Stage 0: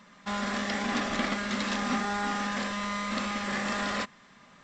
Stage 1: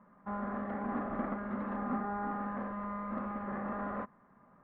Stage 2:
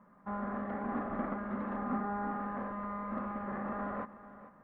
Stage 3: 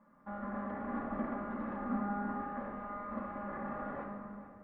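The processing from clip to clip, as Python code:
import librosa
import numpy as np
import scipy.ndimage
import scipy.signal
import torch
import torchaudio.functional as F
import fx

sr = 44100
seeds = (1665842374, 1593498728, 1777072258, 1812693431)

y1 = scipy.signal.sosfilt(scipy.signal.butter(4, 1300.0, 'lowpass', fs=sr, output='sos'), x)
y1 = F.gain(torch.from_numpy(y1), -4.5).numpy()
y2 = fx.echo_feedback(y1, sr, ms=443, feedback_pct=31, wet_db=-15)
y3 = fx.room_shoebox(y2, sr, seeds[0], volume_m3=4000.0, walls='mixed', distance_m=2.4)
y3 = F.gain(torch.from_numpy(y3), -5.5).numpy()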